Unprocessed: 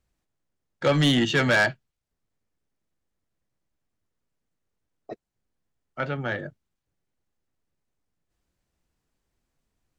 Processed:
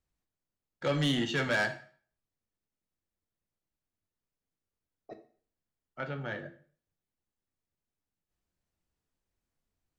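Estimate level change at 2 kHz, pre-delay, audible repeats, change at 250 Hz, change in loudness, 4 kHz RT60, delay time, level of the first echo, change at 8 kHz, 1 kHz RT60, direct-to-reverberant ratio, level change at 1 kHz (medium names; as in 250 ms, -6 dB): -8.5 dB, 5 ms, no echo, -8.5 dB, -8.5 dB, 0.45 s, no echo, no echo, -8.5 dB, 0.45 s, 7.5 dB, -8.5 dB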